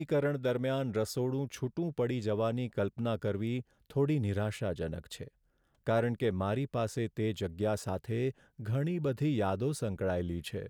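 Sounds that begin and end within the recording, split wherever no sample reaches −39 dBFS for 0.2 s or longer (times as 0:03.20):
0:03.90–0:05.24
0:05.87–0:08.31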